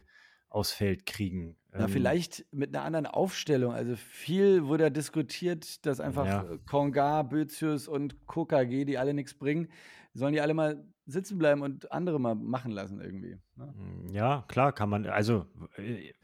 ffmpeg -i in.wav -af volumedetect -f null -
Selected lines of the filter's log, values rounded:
mean_volume: -30.7 dB
max_volume: -12.1 dB